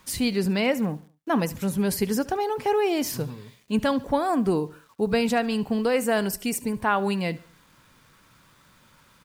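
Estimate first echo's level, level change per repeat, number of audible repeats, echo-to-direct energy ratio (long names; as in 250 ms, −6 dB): −19.5 dB, −8.0 dB, 2, −19.0 dB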